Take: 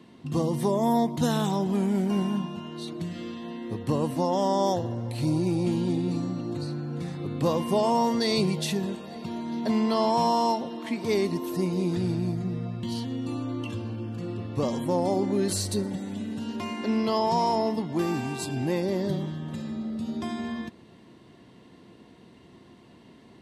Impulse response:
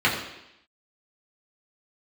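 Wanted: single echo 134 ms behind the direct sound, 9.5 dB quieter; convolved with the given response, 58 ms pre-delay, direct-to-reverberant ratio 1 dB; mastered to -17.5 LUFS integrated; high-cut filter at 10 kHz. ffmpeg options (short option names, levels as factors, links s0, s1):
-filter_complex "[0:a]lowpass=10000,aecho=1:1:134:0.335,asplit=2[s0][s1];[1:a]atrim=start_sample=2205,adelay=58[s2];[s1][s2]afir=irnorm=-1:irlink=0,volume=0.112[s3];[s0][s3]amix=inputs=2:normalize=0,volume=2.24"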